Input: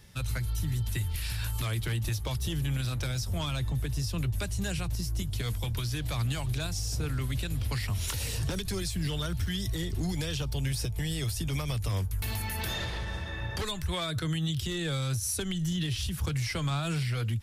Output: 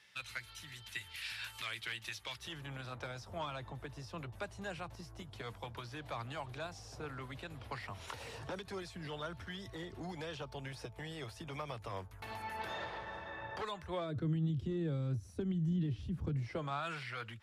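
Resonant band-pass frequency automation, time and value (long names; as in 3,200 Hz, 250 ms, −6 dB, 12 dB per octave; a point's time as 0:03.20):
resonant band-pass, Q 1.1
0:02.30 2,300 Hz
0:02.71 860 Hz
0:13.79 860 Hz
0:14.22 260 Hz
0:16.37 260 Hz
0:16.86 1,300 Hz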